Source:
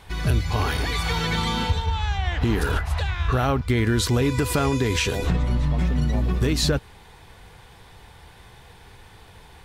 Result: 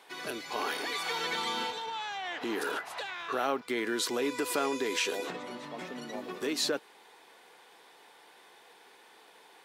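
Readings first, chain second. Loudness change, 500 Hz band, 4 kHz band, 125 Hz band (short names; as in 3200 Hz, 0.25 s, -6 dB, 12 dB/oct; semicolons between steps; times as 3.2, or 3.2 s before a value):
-10.0 dB, -6.5 dB, -6.0 dB, -34.5 dB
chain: HPF 300 Hz 24 dB/oct; gain -6 dB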